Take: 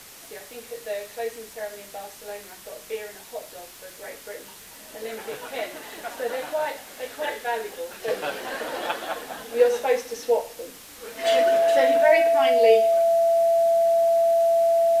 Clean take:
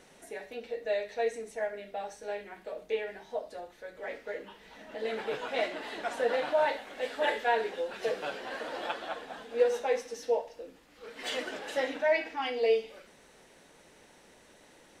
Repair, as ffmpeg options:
ffmpeg -i in.wav -af "adeclick=threshold=4,bandreject=frequency=670:width=30,afwtdn=0.0063,asetnsamples=nb_out_samples=441:pad=0,asendcmd='8.08 volume volume -7dB',volume=0dB" out.wav

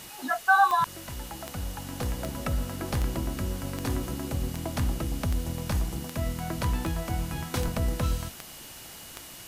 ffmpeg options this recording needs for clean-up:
ffmpeg -i in.wav -af "adeclick=threshold=4,bandreject=frequency=2900:width=30,afwtdn=0.0063" out.wav

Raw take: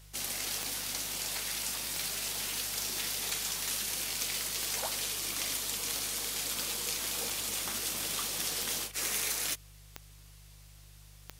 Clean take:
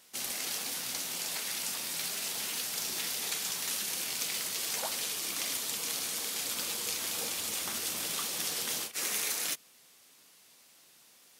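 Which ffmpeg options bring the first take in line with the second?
ffmpeg -i in.wav -af "adeclick=threshold=4,bandreject=frequency=50.2:width_type=h:width=4,bandreject=frequency=100.4:width_type=h:width=4,bandreject=frequency=150.6:width_type=h:width=4" out.wav

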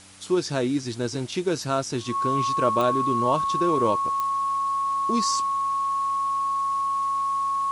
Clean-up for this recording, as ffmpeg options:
ffmpeg -i in.wav -af "adeclick=threshold=4,bandreject=frequency=95.7:width_type=h:width=4,bandreject=frequency=191.4:width_type=h:width=4,bandreject=frequency=287.1:width_type=h:width=4,bandreject=frequency=1100:width=30,afwtdn=0.0045" out.wav

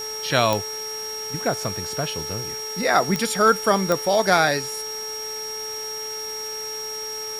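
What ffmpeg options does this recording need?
ffmpeg -i in.wav -af "adeclick=threshold=4,bandreject=frequency=434.6:width_type=h:width=4,bandreject=frequency=869.2:width_type=h:width=4,bandreject=frequency=1303.8:width_type=h:width=4,bandreject=frequency=1738.4:width_type=h:width=4,bandreject=frequency=2173:width_type=h:width=4,bandreject=frequency=5600:width=30,afwtdn=0.01" out.wav

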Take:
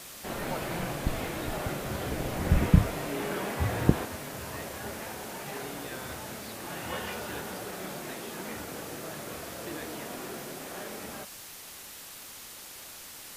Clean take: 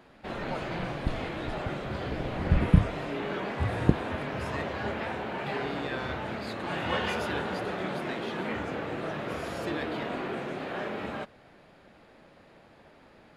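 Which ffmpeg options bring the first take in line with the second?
ffmpeg -i in.wav -af "adeclick=threshold=4,afwtdn=0.0063,asetnsamples=nb_out_samples=441:pad=0,asendcmd='4.05 volume volume 6.5dB',volume=0dB" out.wav

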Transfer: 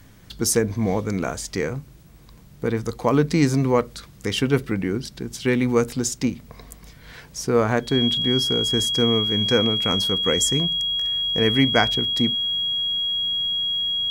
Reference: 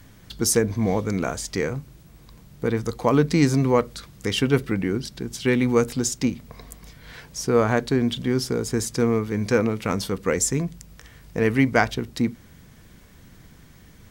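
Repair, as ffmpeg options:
ffmpeg -i in.wav -af "bandreject=frequency=3300:width=30" out.wav

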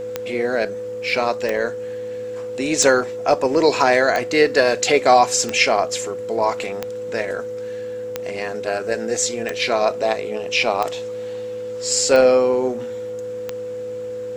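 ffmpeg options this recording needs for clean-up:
ffmpeg -i in.wav -af "adeclick=threshold=4,bandreject=frequency=109.5:width_type=h:width=4,bandreject=frequency=219:width_type=h:width=4,bandreject=frequency=328.5:width_type=h:width=4,bandreject=frequency=438:width_type=h:width=4,bandreject=frequency=500:width=30" out.wav

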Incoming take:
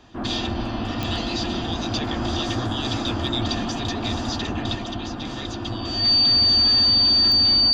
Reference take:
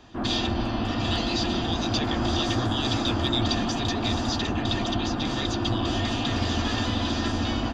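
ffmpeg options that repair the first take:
ffmpeg -i in.wav -af "adeclick=threshold=4,bandreject=frequency=4600:width=30,asetnsamples=nb_out_samples=441:pad=0,asendcmd='4.75 volume volume 3.5dB',volume=0dB" out.wav

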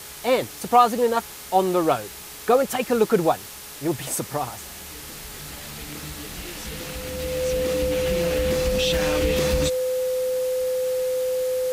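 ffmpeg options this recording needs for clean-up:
ffmpeg -i in.wav -af "adeclick=threshold=4,bandreject=frequency=421.1:width_type=h:width=4,bandreject=frequency=842.2:width_type=h:width=4,bandreject=frequency=1263.3:width_type=h:width=4,bandreject=frequency=1684.4:width_type=h:width=4,bandreject=frequency=2105.5:width_type=h:width=4,bandreject=frequency=510:width=30,afwtdn=0.013" out.wav

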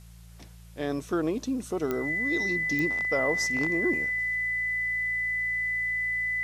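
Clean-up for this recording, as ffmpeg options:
ffmpeg -i in.wav -af "adeclick=threshold=4,bandreject=frequency=56.9:width_type=h:width=4,bandreject=frequency=113.8:width_type=h:width=4,bandreject=frequency=170.7:width_type=h:width=4,bandreject=frequency=2000:width=30,agate=range=-21dB:threshold=-40dB" out.wav

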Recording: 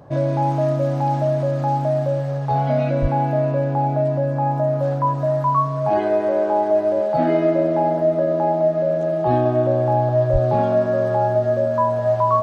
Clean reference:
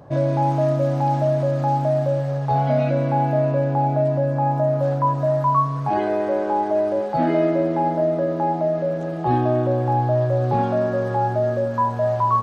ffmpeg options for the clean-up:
ffmpeg -i in.wav -filter_complex "[0:a]bandreject=frequency=630:width=30,asplit=3[link_01][link_02][link_03];[link_01]afade=type=out:start_time=3.01:duration=0.02[link_04];[link_02]highpass=frequency=140:width=0.5412,highpass=frequency=140:width=1.3066,afade=type=in:start_time=3.01:duration=0.02,afade=type=out:start_time=3.13:duration=0.02[link_05];[link_03]afade=type=in:start_time=3.13:duration=0.02[link_06];[link_04][link_05][link_06]amix=inputs=3:normalize=0,asplit=3[link_07][link_08][link_09];[link_07]afade=type=out:start_time=10.32:duration=0.02[link_10];[link_08]highpass=frequency=140:width=0.5412,highpass=frequency=140:width=1.3066,afade=type=in:start_time=10.32:duration=0.02,afade=type=out:start_time=10.44:duration=0.02[link_11];[link_09]afade=type=in:start_time=10.44:duration=0.02[link_12];[link_10][link_11][link_12]amix=inputs=3:normalize=0" out.wav

